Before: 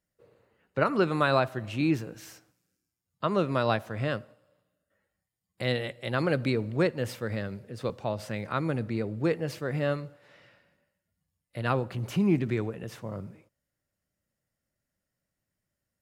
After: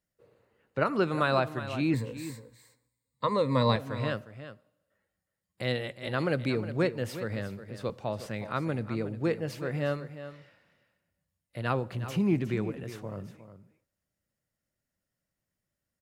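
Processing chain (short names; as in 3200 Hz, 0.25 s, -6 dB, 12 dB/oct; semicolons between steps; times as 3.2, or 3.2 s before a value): 1.93–3.76 ripple EQ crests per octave 0.99, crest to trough 16 dB; on a send: echo 0.361 s -12.5 dB; on the sum: gain -2 dB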